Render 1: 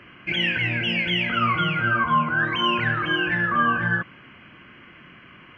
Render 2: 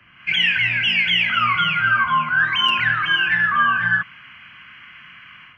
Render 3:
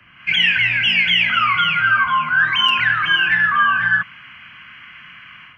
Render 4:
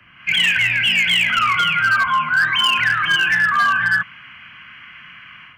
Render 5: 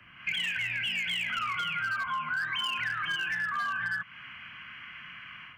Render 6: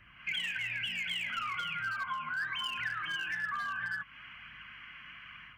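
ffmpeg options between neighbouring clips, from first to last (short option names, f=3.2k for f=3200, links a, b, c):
-filter_complex "[0:a]acrossover=split=240|660|1100[a][b][c][d];[b]acrusher=bits=3:mix=0:aa=0.000001[e];[d]dynaudnorm=f=130:g=3:m=11.5dB[f];[a][e][c][f]amix=inputs=4:normalize=0,volume=-4dB"
-filter_complex "[0:a]equalizer=f=400:t=o:w=0.39:g=-2,acrossover=split=830[a][b];[a]alimiter=level_in=6.5dB:limit=-24dB:level=0:latency=1,volume=-6.5dB[c];[c][b]amix=inputs=2:normalize=0,volume=2.5dB"
-af "asoftclip=type=hard:threshold=-11dB"
-af "acompressor=threshold=-25dB:ratio=6,volume=-5dB"
-af "aeval=exprs='val(0)+0.000501*(sin(2*PI*50*n/s)+sin(2*PI*2*50*n/s)/2+sin(2*PI*3*50*n/s)/3+sin(2*PI*4*50*n/s)/4+sin(2*PI*5*50*n/s)/5)':c=same,flanger=delay=0.5:depth=3.2:regen=68:speed=1.1:shape=sinusoidal"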